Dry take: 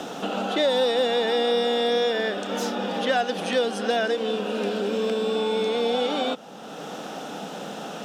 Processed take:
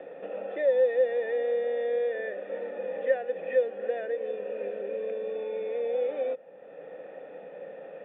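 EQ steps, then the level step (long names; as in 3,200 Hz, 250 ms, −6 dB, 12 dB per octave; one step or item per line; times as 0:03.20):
formant resonators in series e
parametric band 230 Hz −6.5 dB 0.46 octaves
+2.0 dB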